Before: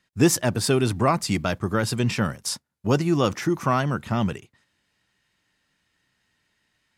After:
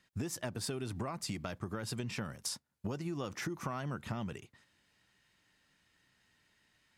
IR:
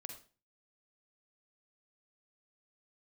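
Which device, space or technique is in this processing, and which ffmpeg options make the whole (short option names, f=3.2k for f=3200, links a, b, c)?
serial compression, leveller first: -af "acompressor=threshold=-23dB:ratio=3,acompressor=threshold=-35dB:ratio=6,volume=-1dB"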